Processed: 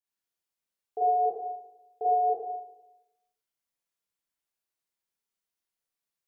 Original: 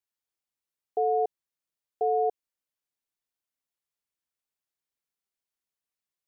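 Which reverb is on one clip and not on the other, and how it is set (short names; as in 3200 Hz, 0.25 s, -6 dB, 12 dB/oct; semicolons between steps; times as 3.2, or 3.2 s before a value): Schroeder reverb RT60 0.95 s, combs from 33 ms, DRR -7.5 dB; gain -7 dB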